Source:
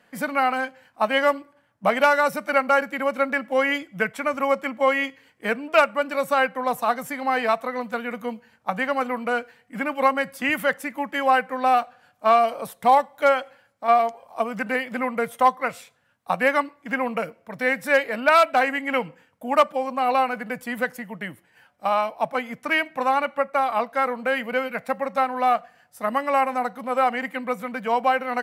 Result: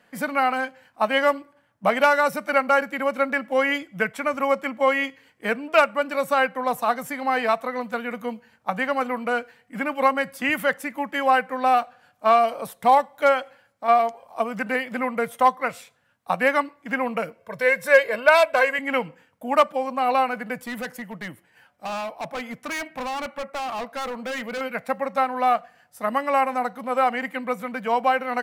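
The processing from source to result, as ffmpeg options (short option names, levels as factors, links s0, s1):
-filter_complex "[0:a]asettb=1/sr,asplit=3[s0][s1][s2];[s0]atrim=end=17.394[s3];[s1]atrim=start=17.39:end=18.79,asetpts=PTS-STARTPTS,afade=t=in:d=0.004:c=qsin,afade=t=out:st=1.396:d=0.004:c=qsin,aecho=1:1:1.9:0.71,atrim=end_sample=61740[s4];[s2]atrim=start=18.786[s5];[s3][s4]acrossfade=d=0.004:c1=hsin:c2=qsin[s6];[s6][s5]acrossfade=d=0.004:c1=qsin:c2=hsin,asettb=1/sr,asplit=3[s7][s8][s9];[s7]atrim=end=20.644[s10];[s8]atrim=start=20.64:end=24.61,asetpts=PTS-STARTPTS,afade=t=in:d=0.004:c=qsin,afade=t=out:st=3.966:d=0.004:c=qsin,volume=22.4,asoftclip=hard,volume=0.0447[s11];[s9]atrim=start=24.606[s12];[s10][s11]acrossfade=d=0.004:c1=hsin:c2=qsin[s13];[s13][s12]acrossfade=d=0.004:c1=qsin:c2=hsin"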